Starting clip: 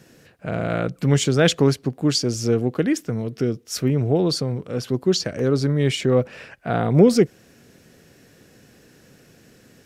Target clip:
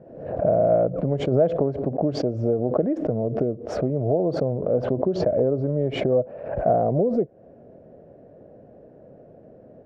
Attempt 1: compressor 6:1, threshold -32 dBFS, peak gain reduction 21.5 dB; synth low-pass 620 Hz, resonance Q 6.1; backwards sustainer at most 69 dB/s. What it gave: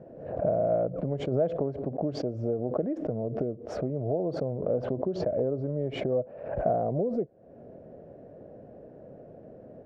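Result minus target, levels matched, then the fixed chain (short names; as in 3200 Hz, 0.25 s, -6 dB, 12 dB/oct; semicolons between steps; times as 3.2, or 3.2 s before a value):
compressor: peak gain reduction +7 dB
compressor 6:1, threshold -23.5 dBFS, peak gain reduction 14.5 dB; synth low-pass 620 Hz, resonance Q 6.1; backwards sustainer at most 69 dB/s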